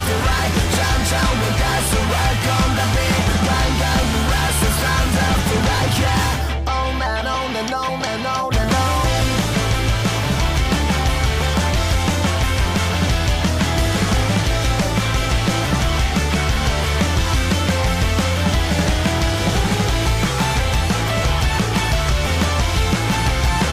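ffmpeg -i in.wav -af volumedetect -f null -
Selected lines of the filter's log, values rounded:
mean_volume: -17.4 dB
max_volume: -8.8 dB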